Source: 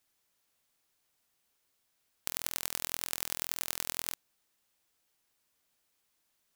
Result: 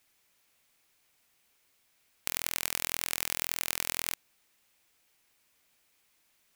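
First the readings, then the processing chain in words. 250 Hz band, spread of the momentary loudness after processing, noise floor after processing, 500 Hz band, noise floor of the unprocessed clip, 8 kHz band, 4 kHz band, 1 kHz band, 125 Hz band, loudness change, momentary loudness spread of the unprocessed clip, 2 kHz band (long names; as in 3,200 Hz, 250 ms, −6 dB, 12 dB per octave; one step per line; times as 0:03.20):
+2.5 dB, 5 LU, −71 dBFS, +2.5 dB, −77 dBFS, +2.5 dB, +3.5 dB, +3.0 dB, +2.5 dB, +3.0 dB, 5 LU, +6.0 dB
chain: parametric band 2,300 Hz +5.5 dB 0.59 octaves
in parallel at +2.5 dB: brickwall limiter −13 dBFS, peak gain reduction 10 dB
on the sum: level −1.5 dB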